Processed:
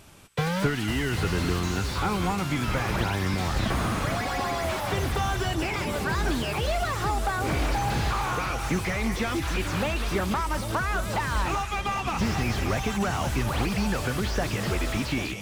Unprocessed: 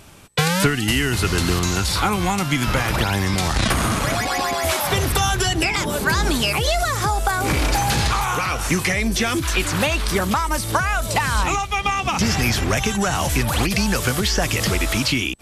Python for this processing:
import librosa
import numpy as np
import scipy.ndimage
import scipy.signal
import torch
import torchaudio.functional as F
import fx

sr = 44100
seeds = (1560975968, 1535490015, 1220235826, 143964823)

y = fx.echo_split(x, sr, split_hz=1200.0, low_ms=796, high_ms=190, feedback_pct=52, wet_db=-11)
y = fx.slew_limit(y, sr, full_power_hz=150.0)
y = F.gain(torch.from_numpy(y), -6.0).numpy()